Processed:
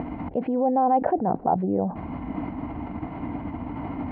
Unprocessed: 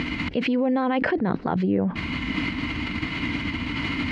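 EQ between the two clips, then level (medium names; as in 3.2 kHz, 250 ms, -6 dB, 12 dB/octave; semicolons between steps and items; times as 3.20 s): resonant low-pass 760 Hz, resonance Q 4.9; -4.0 dB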